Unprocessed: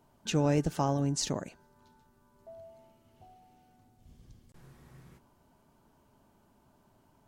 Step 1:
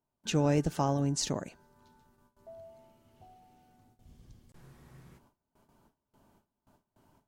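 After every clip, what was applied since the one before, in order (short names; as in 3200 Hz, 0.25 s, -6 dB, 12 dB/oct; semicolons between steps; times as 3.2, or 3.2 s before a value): gate with hold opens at -55 dBFS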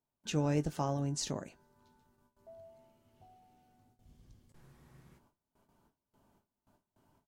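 doubler 20 ms -12.5 dB; gain -5 dB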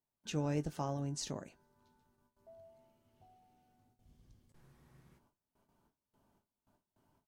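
notch 7200 Hz, Q 28; gain -4 dB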